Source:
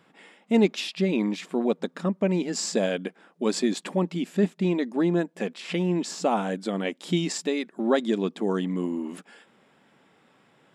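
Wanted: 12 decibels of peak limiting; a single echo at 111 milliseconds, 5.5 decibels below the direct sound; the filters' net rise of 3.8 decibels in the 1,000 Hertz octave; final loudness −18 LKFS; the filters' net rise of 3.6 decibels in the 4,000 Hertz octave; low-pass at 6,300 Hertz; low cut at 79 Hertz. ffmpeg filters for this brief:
ffmpeg -i in.wav -af "highpass=79,lowpass=6300,equalizer=frequency=1000:width_type=o:gain=5,equalizer=frequency=4000:width_type=o:gain=5,alimiter=limit=-19.5dB:level=0:latency=1,aecho=1:1:111:0.531,volume=11dB" out.wav

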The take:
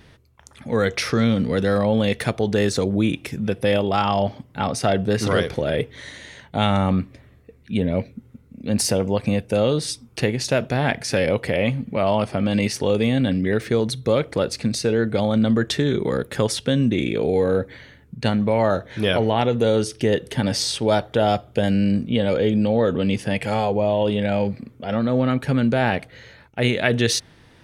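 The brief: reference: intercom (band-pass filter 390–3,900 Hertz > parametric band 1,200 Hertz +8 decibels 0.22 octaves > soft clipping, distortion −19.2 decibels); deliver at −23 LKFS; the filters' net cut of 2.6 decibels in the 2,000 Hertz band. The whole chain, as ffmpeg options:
ffmpeg -i in.wav -af "highpass=390,lowpass=3900,equalizer=frequency=1200:width_type=o:width=0.22:gain=8,equalizer=frequency=2000:width_type=o:gain=-3.5,asoftclip=threshold=-13.5dB,volume=3dB" out.wav

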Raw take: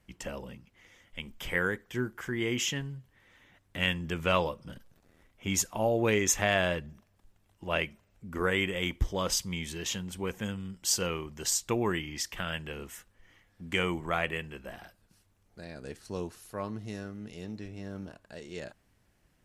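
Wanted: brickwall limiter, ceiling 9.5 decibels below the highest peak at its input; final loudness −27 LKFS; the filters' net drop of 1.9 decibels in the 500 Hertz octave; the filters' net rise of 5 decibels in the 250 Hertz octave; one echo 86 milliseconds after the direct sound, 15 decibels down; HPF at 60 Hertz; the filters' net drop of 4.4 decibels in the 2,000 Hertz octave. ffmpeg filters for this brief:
ffmpeg -i in.wav -af "highpass=60,equalizer=frequency=250:width_type=o:gain=8.5,equalizer=frequency=500:width_type=o:gain=-5,equalizer=frequency=2000:width_type=o:gain=-5.5,alimiter=limit=-22dB:level=0:latency=1,aecho=1:1:86:0.178,volume=8dB" out.wav

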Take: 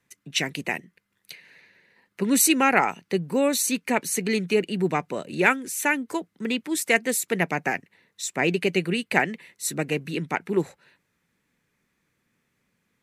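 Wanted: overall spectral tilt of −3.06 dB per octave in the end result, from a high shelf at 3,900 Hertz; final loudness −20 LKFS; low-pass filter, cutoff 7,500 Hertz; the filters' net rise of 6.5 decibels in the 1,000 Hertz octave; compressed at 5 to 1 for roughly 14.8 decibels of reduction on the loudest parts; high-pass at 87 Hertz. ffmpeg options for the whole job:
ffmpeg -i in.wav -af "highpass=87,lowpass=7500,equalizer=frequency=1000:width_type=o:gain=8.5,highshelf=frequency=3900:gain=5,acompressor=threshold=-27dB:ratio=5,volume=11dB" out.wav

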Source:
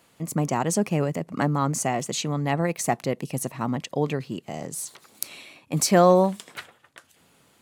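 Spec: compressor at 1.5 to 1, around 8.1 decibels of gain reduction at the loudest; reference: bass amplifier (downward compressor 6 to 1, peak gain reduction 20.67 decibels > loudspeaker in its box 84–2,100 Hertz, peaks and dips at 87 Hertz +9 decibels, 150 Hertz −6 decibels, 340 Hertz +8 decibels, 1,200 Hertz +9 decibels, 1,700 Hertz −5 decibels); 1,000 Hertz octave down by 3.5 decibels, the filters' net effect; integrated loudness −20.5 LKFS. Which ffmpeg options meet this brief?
ffmpeg -i in.wav -af "equalizer=frequency=1000:width_type=o:gain=-8.5,acompressor=threshold=-37dB:ratio=1.5,acompressor=threshold=-45dB:ratio=6,highpass=frequency=84:width=0.5412,highpass=frequency=84:width=1.3066,equalizer=frequency=87:width_type=q:width=4:gain=9,equalizer=frequency=150:width_type=q:width=4:gain=-6,equalizer=frequency=340:width_type=q:width=4:gain=8,equalizer=frequency=1200:width_type=q:width=4:gain=9,equalizer=frequency=1700:width_type=q:width=4:gain=-5,lowpass=frequency=2100:width=0.5412,lowpass=frequency=2100:width=1.3066,volume=28.5dB" out.wav

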